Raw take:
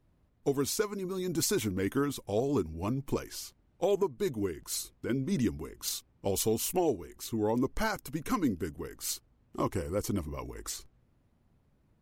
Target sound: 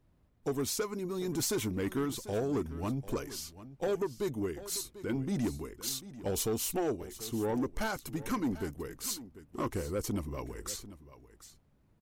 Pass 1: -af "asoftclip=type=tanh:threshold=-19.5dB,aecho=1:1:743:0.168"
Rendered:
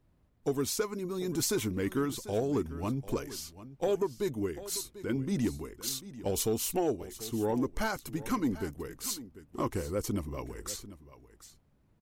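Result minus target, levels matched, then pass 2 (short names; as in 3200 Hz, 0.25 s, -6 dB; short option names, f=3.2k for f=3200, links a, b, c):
soft clip: distortion -9 dB
-af "asoftclip=type=tanh:threshold=-26dB,aecho=1:1:743:0.168"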